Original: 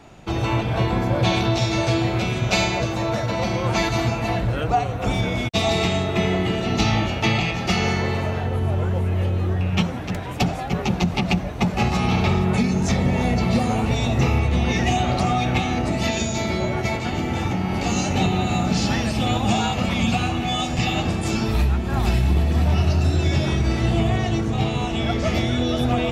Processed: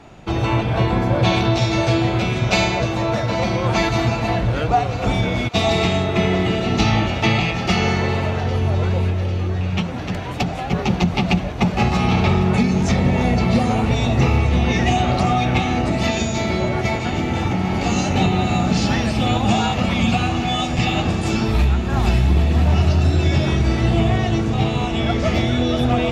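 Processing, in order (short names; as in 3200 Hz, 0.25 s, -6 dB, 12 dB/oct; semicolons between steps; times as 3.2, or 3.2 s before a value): high shelf 7900 Hz -9.5 dB; thinning echo 0.799 s, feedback 85%, high-pass 880 Hz, level -16 dB; 9.1–10.67 compressor 2.5:1, threshold -22 dBFS, peak gain reduction 5.5 dB; gain +3 dB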